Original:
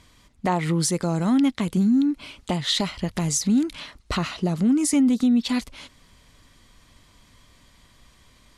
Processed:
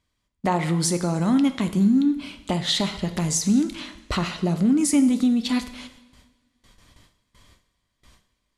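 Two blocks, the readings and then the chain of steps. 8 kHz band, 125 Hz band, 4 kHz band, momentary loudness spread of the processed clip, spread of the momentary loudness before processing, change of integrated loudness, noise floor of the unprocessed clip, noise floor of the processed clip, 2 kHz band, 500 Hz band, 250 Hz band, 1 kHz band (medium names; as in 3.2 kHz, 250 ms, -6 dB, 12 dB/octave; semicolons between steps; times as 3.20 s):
+0.5 dB, +0.5 dB, +0.5 dB, 10 LU, 10 LU, +0.5 dB, -57 dBFS, -76 dBFS, +0.5 dB, +0.5 dB, +0.5 dB, +0.5 dB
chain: gate with hold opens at -43 dBFS; two-slope reverb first 0.83 s, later 2.1 s, from -18 dB, DRR 8.5 dB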